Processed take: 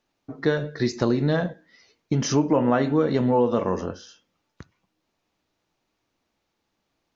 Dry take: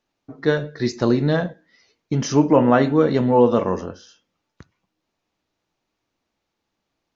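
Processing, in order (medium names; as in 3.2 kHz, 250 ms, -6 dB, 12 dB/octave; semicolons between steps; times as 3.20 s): compression 2.5:1, threshold -21 dBFS, peak gain reduction 8.5 dB; trim +1.5 dB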